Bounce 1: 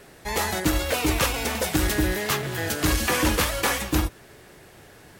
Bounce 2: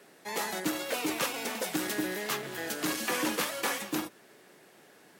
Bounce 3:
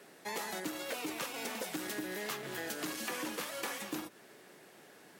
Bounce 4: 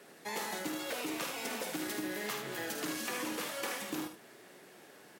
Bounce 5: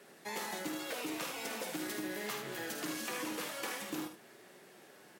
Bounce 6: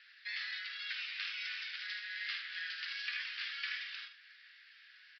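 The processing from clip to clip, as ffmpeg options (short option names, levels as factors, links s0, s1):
-af "highpass=f=180:w=0.5412,highpass=f=180:w=1.3066,volume=0.422"
-af "acompressor=threshold=0.0158:ratio=6"
-af "aecho=1:1:52|77:0.398|0.447"
-af "flanger=delay=5.1:depth=1.3:regen=-70:speed=0.43:shape=sinusoidal,volume=1.33"
-af "asuperpass=centerf=3500:order=12:qfactor=0.59,aresample=11025,aresample=44100,volume=1.68"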